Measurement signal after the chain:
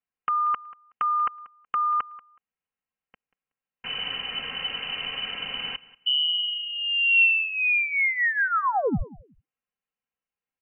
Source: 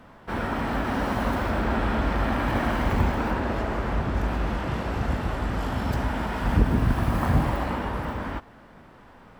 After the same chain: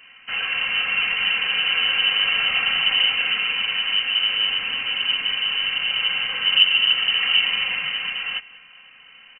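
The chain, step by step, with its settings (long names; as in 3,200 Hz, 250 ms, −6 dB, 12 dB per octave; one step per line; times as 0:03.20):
comb filter 3.6 ms, depth 61%
dynamic equaliser 280 Hz, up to +5 dB, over −41 dBFS, Q 5.6
on a send: repeating echo 186 ms, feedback 20%, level −20 dB
on the sum: voice inversion scrambler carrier 3,000 Hz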